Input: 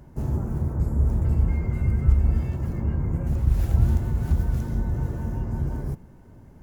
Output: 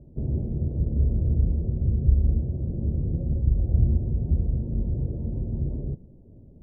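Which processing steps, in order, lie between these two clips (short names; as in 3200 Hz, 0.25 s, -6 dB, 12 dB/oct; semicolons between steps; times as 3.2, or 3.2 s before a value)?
steep low-pass 600 Hz 36 dB/oct; gain -1 dB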